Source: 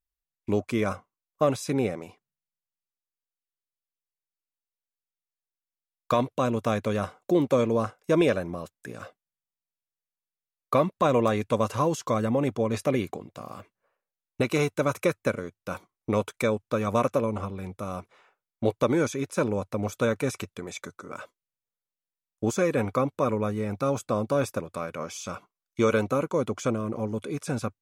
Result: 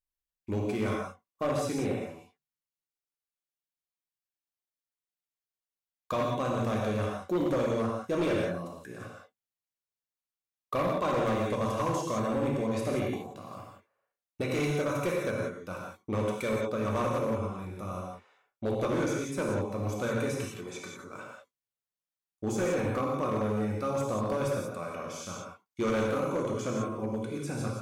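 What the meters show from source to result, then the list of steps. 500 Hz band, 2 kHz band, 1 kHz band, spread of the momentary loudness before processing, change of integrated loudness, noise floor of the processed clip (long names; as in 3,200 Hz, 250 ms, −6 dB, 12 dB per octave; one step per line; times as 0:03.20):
−4.5 dB, −3.5 dB, −3.5 dB, 15 LU, −4.0 dB, below −85 dBFS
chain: reverb whose tail is shaped and stops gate 210 ms flat, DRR −2.5 dB
hard clipping −16.5 dBFS, distortion −14 dB
level −7.5 dB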